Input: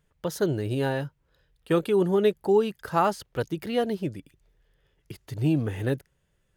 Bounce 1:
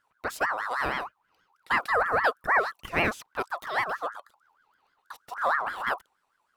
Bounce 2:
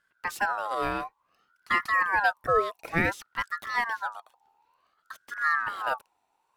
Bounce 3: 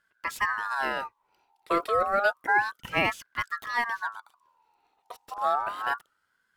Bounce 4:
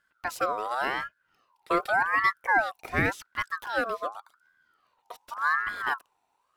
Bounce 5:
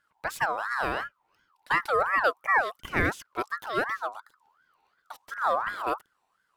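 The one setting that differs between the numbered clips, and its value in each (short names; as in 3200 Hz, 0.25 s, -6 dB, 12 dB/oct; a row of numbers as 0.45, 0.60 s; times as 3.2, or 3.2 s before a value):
ring modulator with a swept carrier, at: 6.3, 0.56, 0.3, 0.88, 2.8 Hz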